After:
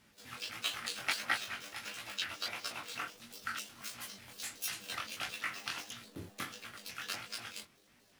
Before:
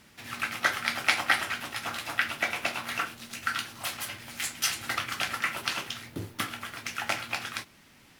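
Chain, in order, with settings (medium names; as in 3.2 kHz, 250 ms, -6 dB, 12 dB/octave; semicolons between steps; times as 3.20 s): pitch shift switched off and on +12 st, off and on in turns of 123 ms; chorus 1.5 Hz, delay 17 ms, depth 7 ms; trim -6 dB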